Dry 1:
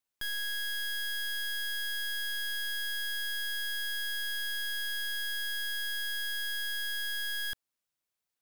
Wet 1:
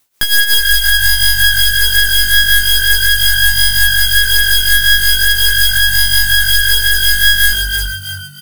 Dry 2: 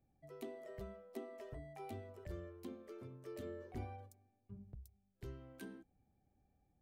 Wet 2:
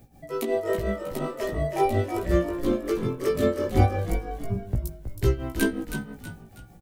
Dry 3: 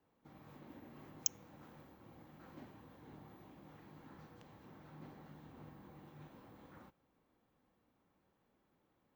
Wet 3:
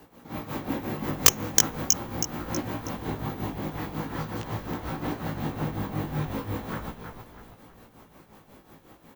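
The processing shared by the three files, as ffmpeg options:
-filter_complex "[0:a]highshelf=f=6.5k:g=5.5,asoftclip=type=tanh:threshold=-11.5dB,tremolo=f=5.5:d=0.78,asplit=6[a][b][c][d][e][f];[b]adelay=321,afreqshift=-48,volume=-7.5dB[g];[c]adelay=642,afreqshift=-96,volume=-15dB[h];[d]adelay=963,afreqshift=-144,volume=-22.6dB[i];[e]adelay=1284,afreqshift=-192,volume=-30.1dB[j];[f]adelay=1605,afreqshift=-240,volume=-37.6dB[k];[a][g][h][i][j][k]amix=inputs=6:normalize=0,aeval=exprs='(mod(12.6*val(0)+1,2)-1)/12.6':c=same,flanger=delay=17:depth=2:speed=0.41,alimiter=level_in=31dB:limit=-1dB:release=50:level=0:latency=1,volume=-1dB"

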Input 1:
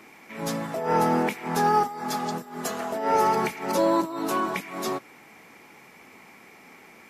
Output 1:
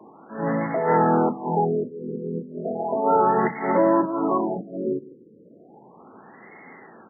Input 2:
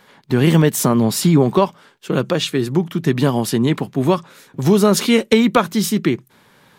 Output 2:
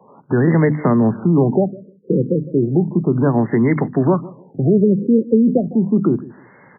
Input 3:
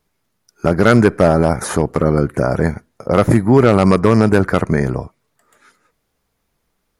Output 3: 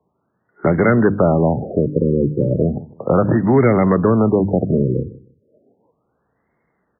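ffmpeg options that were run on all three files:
-filter_complex "[0:a]highshelf=f=2.1k:t=q:w=1.5:g=7.5,bandreject=f=50:t=h:w=6,bandreject=f=100:t=h:w=6,bandreject=f=150:t=h:w=6,bandreject=f=200:t=h:w=6,bandreject=f=250:t=h:w=6,bandreject=f=300:t=h:w=6,acrossover=split=250|3000[a][b][c];[b]acompressor=threshold=-23dB:ratio=2.5[d];[a][d][c]amix=inputs=3:normalize=0,acrossover=split=340|420|3800[e][f][g][h];[e]alimiter=limit=-16.5dB:level=0:latency=1[i];[i][f][g][h]amix=inputs=4:normalize=0,asoftclip=type=tanh:threshold=-2dB,highpass=110,lowpass=5.5k,asplit=2[j][k];[k]adelay=155,lowpass=f=830:p=1,volume=-19dB,asplit=2[l][m];[m]adelay=155,lowpass=f=830:p=1,volume=0.27[n];[j][l][n]amix=inputs=3:normalize=0,afftfilt=real='re*lt(b*sr/1024,520*pow(2200/520,0.5+0.5*sin(2*PI*0.34*pts/sr)))':imag='im*lt(b*sr/1024,520*pow(2200/520,0.5+0.5*sin(2*PI*0.34*pts/sr)))':win_size=1024:overlap=0.75,volume=6.5dB"

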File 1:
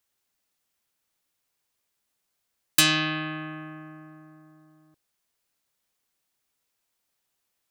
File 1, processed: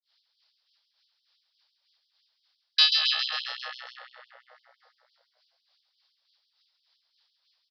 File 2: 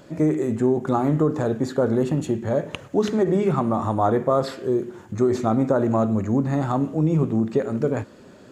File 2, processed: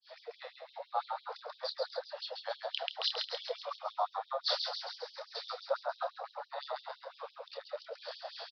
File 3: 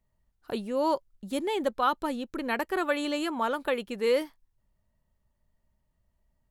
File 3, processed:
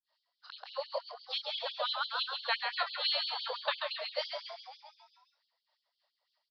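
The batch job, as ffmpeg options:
-filter_complex "[0:a]adynamicequalizer=threshold=0.00891:dfrequency=2100:dqfactor=0.99:tfrequency=2100:tqfactor=0.99:attack=5:release=100:ratio=0.375:range=2:mode=cutabove:tftype=bell,areverse,acompressor=threshold=-32dB:ratio=4,areverse,acrossover=split=480[a][b];[a]aeval=exprs='val(0)*(1-1/2+1/2*cos(2*PI*3.4*n/s))':c=same[c];[b]aeval=exprs='val(0)*(1-1/2-1/2*cos(2*PI*3.4*n/s))':c=same[d];[c][d]amix=inputs=2:normalize=0,aresample=11025,aresample=44100,aexciter=amount=3.7:drive=6.5:freq=3.4k,asplit=2[e][f];[f]adelay=28,volume=-7.5dB[g];[e][g]amix=inputs=2:normalize=0,asplit=9[h][i][j][k][l][m][n][o][p];[i]adelay=135,afreqshift=62,volume=-5dB[q];[j]adelay=270,afreqshift=124,volume=-9.4dB[r];[k]adelay=405,afreqshift=186,volume=-13.9dB[s];[l]adelay=540,afreqshift=248,volume=-18.3dB[t];[m]adelay=675,afreqshift=310,volume=-22.7dB[u];[n]adelay=810,afreqshift=372,volume=-27.2dB[v];[o]adelay=945,afreqshift=434,volume=-31.6dB[w];[p]adelay=1080,afreqshift=496,volume=-36.1dB[x];[h][q][r][s][t][u][v][w][x]amix=inputs=9:normalize=0,afftfilt=real='re*gte(b*sr/1024,460*pow(3000/460,0.5+0.5*sin(2*PI*5.9*pts/sr)))':imag='im*gte(b*sr/1024,460*pow(3000/460,0.5+0.5*sin(2*PI*5.9*pts/sr)))':win_size=1024:overlap=0.75,volume=7dB"

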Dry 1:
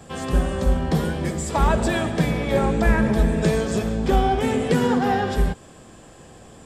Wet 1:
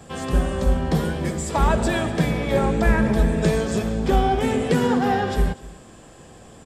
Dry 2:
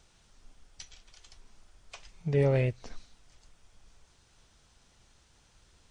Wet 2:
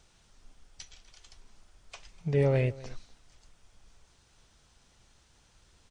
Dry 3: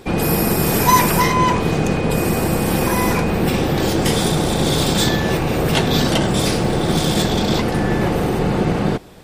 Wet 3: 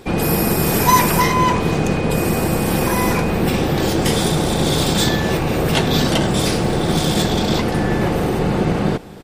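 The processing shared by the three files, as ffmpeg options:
-af "aecho=1:1:247:0.0944"

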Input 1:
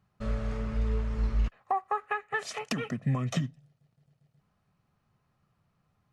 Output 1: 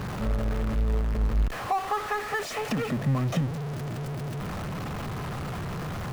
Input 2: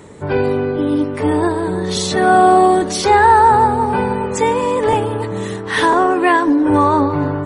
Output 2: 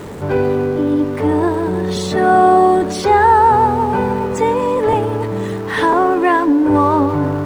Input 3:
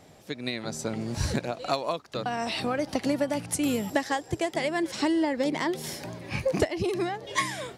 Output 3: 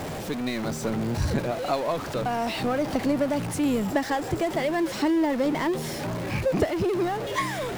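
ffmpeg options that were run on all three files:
-af "aeval=exprs='val(0)+0.5*0.0501*sgn(val(0))':c=same,highshelf=f=2.4k:g=-9.5"

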